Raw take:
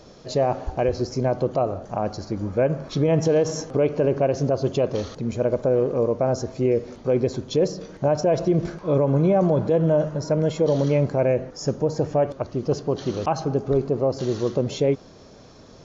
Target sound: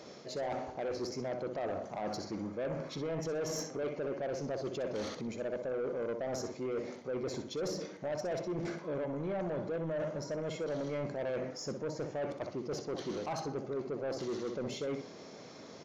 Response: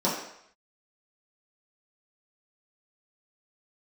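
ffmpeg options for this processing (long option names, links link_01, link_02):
-af "areverse,acompressor=threshold=-28dB:ratio=5,areverse,highpass=190,equalizer=frequency=2100:width_type=o:width=0.23:gain=8,aecho=1:1:62|124|186:0.355|0.0852|0.0204,asoftclip=type=tanh:threshold=-29dB,volume=-2dB"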